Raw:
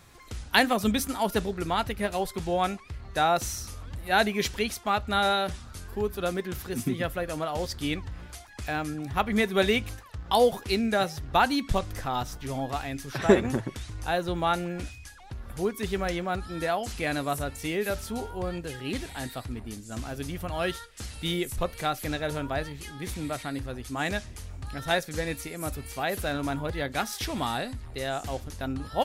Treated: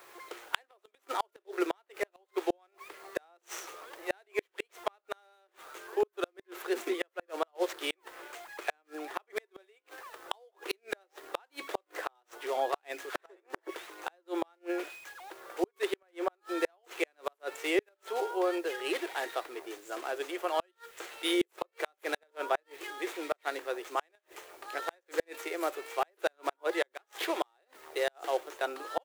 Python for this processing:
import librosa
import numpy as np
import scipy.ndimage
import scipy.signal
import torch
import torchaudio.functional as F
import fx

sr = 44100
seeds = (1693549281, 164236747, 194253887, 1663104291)

y = scipy.signal.medfilt(x, 9)
y = scipy.signal.sosfilt(scipy.signal.cheby1(6, 1.0, 340.0, 'highpass', fs=sr, output='sos'), y)
y = fx.dmg_noise_colour(y, sr, seeds[0], colour='white', level_db=-67.0)
y = fx.gate_flip(y, sr, shuts_db=-22.0, range_db=-42)
y = y * librosa.db_to_amplitude(5.0)